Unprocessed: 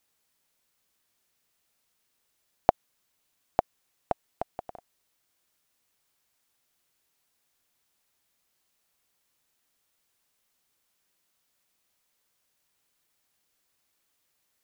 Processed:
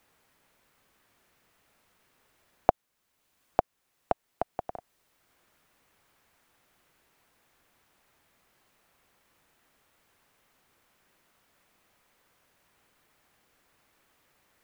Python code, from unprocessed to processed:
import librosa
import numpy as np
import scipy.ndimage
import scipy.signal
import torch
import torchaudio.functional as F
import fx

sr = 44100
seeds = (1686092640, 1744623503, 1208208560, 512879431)

y = fx.band_squash(x, sr, depth_pct=40)
y = F.gain(torch.from_numpy(y), 2.0).numpy()